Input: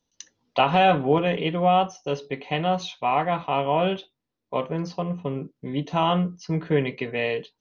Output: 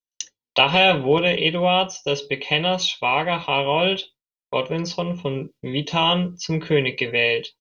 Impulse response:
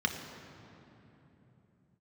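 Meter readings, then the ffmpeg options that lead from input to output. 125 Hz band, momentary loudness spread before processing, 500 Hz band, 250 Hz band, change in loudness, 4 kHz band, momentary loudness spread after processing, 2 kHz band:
+1.0 dB, 11 LU, +3.0 dB, +0.5 dB, +4.0 dB, +12.5 dB, 11 LU, +9.0 dB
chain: -filter_complex "[0:a]agate=range=-33dB:threshold=-43dB:ratio=3:detection=peak,highshelf=frequency=2000:width_type=q:width=1.5:gain=7.5,aecho=1:1:2.1:0.31,asplit=2[link_01][link_02];[link_02]acompressor=threshold=-27dB:ratio=6,volume=-3dB[link_03];[link_01][link_03]amix=inputs=2:normalize=0"

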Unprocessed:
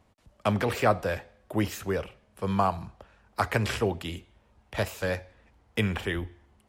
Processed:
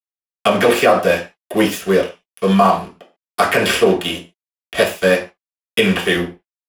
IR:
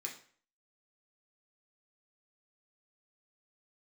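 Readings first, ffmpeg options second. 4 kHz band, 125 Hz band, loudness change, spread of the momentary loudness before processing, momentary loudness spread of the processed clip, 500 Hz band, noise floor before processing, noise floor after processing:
+16.5 dB, +5.5 dB, +13.5 dB, 13 LU, 13 LU, +15.0 dB, −65 dBFS, below −85 dBFS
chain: -filter_complex "[0:a]aeval=exprs='sgn(val(0))*max(abs(val(0))-0.00794,0)':channel_layout=same[link_01];[1:a]atrim=start_sample=2205,afade=type=out:start_time=0.26:duration=0.01,atrim=end_sample=11907,asetrate=61740,aresample=44100[link_02];[link_01][link_02]afir=irnorm=-1:irlink=0,alimiter=level_in=22.5dB:limit=-1dB:release=50:level=0:latency=1,volume=-1dB"

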